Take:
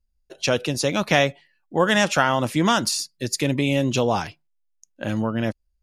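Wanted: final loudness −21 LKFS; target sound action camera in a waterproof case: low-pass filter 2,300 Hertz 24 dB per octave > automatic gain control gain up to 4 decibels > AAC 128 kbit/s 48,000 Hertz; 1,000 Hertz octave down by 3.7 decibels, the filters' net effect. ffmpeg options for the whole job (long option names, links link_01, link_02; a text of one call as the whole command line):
ffmpeg -i in.wav -af "lowpass=frequency=2300:width=0.5412,lowpass=frequency=2300:width=1.3066,equalizer=frequency=1000:width_type=o:gain=-5,dynaudnorm=maxgain=4dB,volume=3.5dB" -ar 48000 -c:a aac -b:a 128k out.aac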